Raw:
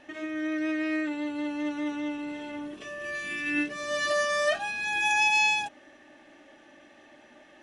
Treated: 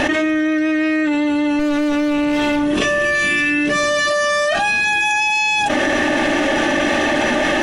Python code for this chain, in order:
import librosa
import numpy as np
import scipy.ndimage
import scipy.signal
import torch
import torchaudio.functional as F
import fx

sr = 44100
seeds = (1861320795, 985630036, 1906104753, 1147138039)

y = fx.clip_asym(x, sr, top_db=-41.5, bottom_db=-27.5, at=(1.59, 2.63))
y = fx.low_shelf(y, sr, hz=71.0, db=8.5)
y = fx.env_flatten(y, sr, amount_pct=100)
y = y * librosa.db_to_amplitude(5.0)